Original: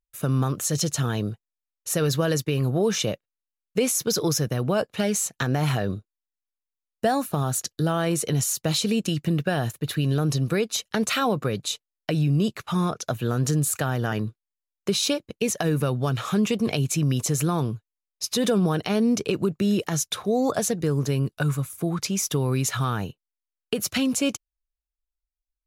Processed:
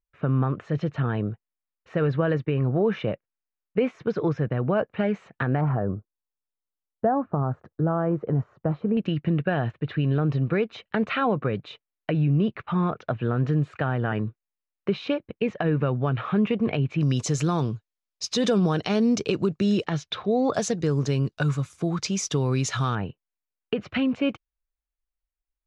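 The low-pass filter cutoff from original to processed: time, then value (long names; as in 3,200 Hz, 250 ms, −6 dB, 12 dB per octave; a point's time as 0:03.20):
low-pass filter 24 dB per octave
2,300 Hz
from 0:05.61 1,300 Hz
from 0:08.97 2,600 Hz
from 0:17.01 6,500 Hz
from 0:19.85 3,900 Hz
from 0:20.53 6,600 Hz
from 0:22.95 2,700 Hz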